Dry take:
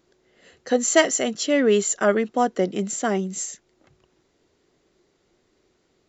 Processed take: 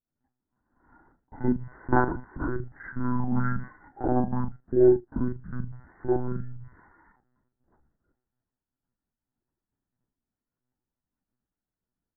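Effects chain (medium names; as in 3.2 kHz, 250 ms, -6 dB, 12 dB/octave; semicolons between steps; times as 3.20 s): expander -54 dBFS; bass shelf 260 Hz +2.5 dB; doubling 18 ms -13 dB; small resonant body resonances 730/1600/2800 Hz, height 11 dB, ringing for 70 ms; monotone LPC vocoder at 8 kHz 250 Hz; speed mistake 15 ips tape played at 7.5 ips; trim -7.5 dB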